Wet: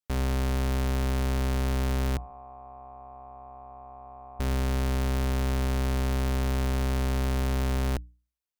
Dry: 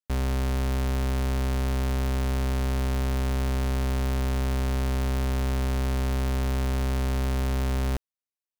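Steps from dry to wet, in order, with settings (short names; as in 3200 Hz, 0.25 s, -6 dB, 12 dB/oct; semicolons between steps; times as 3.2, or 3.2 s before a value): 2.17–4.4 vocal tract filter a; notches 60/120/180/240/300 Hz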